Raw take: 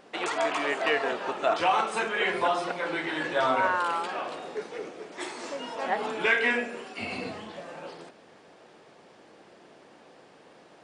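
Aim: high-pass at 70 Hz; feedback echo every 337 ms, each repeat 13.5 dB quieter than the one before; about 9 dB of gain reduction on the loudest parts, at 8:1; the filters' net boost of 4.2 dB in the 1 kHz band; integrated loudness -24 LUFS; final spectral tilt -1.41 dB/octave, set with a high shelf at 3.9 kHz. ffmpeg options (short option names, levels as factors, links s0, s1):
-af "highpass=70,equalizer=f=1000:t=o:g=6,highshelf=f=3900:g=-8,acompressor=threshold=0.0501:ratio=8,aecho=1:1:337|674:0.211|0.0444,volume=2.37"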